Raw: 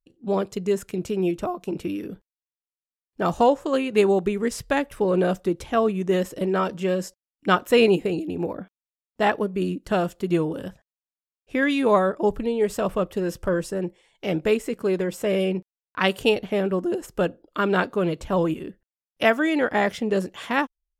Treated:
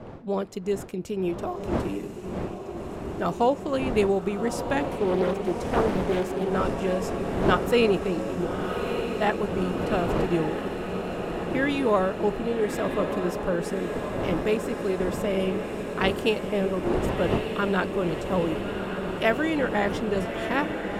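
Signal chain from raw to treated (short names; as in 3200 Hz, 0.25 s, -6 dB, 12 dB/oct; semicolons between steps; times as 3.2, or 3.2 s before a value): wind noise 480 Hz -31 dBFS; diffused feedback echo 1.228 s, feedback 76%, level -7.5 dB; 4.91–6.49 Doppler distortion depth 0.63 ms; gain -4 dB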